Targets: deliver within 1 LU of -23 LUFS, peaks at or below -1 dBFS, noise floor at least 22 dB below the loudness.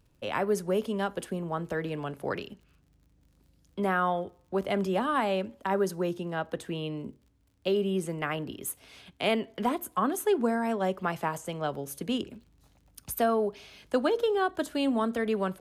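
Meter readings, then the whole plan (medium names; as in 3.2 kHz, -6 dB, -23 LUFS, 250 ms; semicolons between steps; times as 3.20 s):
tick rate 38 per s; loudness -30.5 LUFS; peak level -15.0 dBFS; loudness target -23.0 LUFS
-> de-click; trim +7.5 dB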